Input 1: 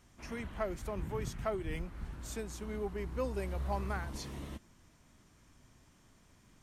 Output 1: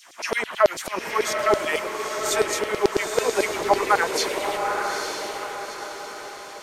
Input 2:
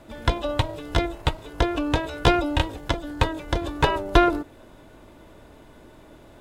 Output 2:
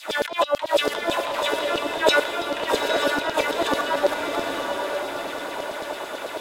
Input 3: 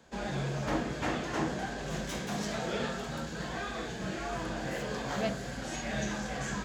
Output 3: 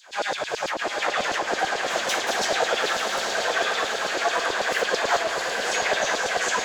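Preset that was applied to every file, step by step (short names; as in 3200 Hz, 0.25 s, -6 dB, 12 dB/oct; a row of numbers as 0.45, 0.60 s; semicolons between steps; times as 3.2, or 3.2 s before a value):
notches 60/120/180/240/300 Hz; negative-ratio compressor -34 dBFS, ratio -1; LFO high-pass saw down 9.1 Hz 410–5100 Hz; diffused feedback echo 0.876 s, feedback 47%, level -4 dB; match loudness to -24 LUFS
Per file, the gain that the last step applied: +18.0, +10.0, +10.5 dB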